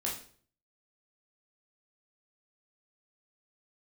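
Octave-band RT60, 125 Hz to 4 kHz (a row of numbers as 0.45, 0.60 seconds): 0.70, 0.55, 0.55, 0.45, 0.45, 0.45 seconds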